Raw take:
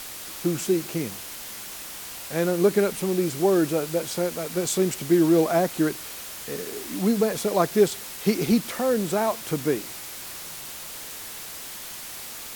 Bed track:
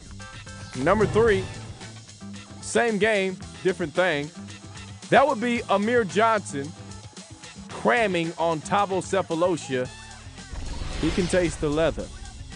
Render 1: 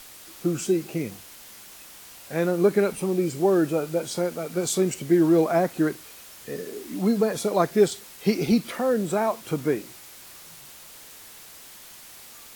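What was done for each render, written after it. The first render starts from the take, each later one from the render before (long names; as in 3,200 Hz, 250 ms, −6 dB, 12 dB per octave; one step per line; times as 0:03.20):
noise reduction from a noise print 8 dB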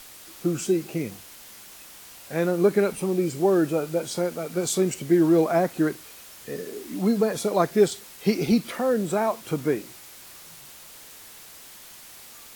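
no processing that can be heard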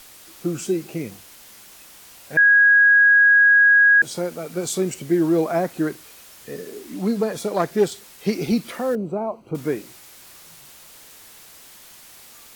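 0:02.37–0:04.02: beep over 1,650 Hz −10 dBFS
0:06.79–0:08.34: phase distortion by the signal itself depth 0.086 ms
0:08.95–0:09.55: moving average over 25 samples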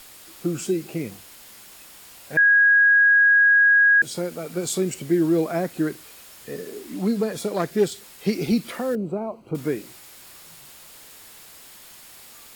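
notch filter 6,000 Hz, Q 16
dynamic equaliser 860 Hz, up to −6 dB, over −32 dBFS, Q 0.98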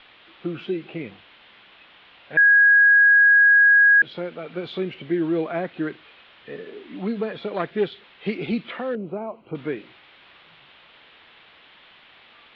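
Butterworth low-pass 3,500 Hz 48 dB per octave
spectral tilt +2 dB per octave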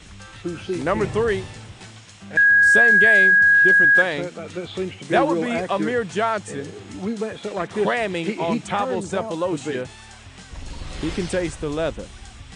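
mix in bed track −1.5 dB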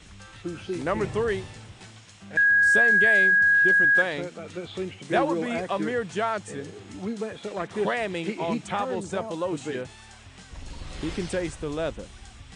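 level −5 dB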